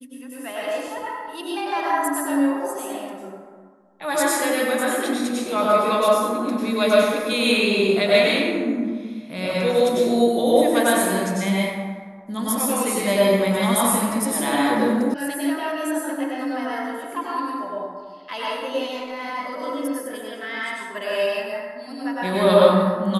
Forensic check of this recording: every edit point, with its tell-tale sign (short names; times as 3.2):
15.14 sound cut off